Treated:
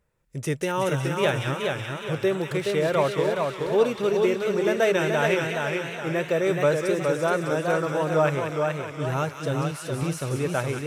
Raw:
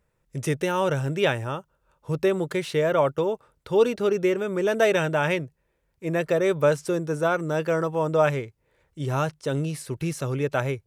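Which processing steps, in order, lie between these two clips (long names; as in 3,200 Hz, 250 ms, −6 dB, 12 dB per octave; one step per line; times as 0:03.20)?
delay with a high-pass on its return 185 ms, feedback 69%, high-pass 1,600 Hz, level −5 dB
feedback echo with a swinging delay time 422 ms, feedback 43%, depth 99 cents, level −4 dB
level −1.5 dB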